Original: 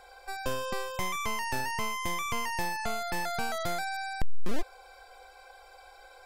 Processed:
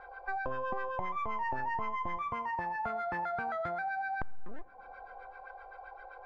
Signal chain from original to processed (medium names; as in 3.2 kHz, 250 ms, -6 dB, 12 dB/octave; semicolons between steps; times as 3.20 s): 2.17–4.20 s: high-pass 47 Hz; compression 12:1, threshold -35 dBFS, peak gain reduction 16 dB; LFO low-pass sine 7.7 Hz 770–1700 Hz; on a send: reverberation RT60 2.0 s, pre-delay 3 ms, DRR 20.5 dB